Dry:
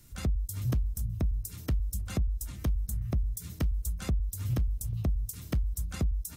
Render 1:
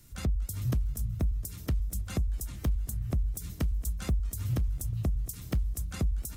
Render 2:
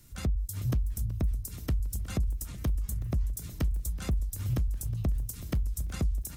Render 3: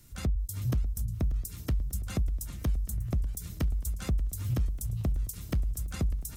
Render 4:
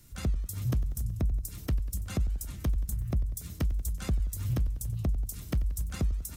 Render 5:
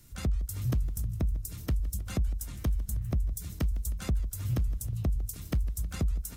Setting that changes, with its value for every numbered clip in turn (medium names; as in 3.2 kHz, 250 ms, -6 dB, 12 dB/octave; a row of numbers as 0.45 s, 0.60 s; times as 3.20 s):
modulated delay, time: 235 ms, 371 ms, 590 ms, 93 ms, 157 ms